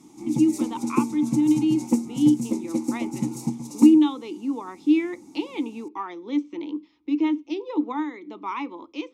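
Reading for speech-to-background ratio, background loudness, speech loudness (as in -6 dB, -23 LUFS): 3.5 dB, -28.0 LUFS, -24.5 LUFS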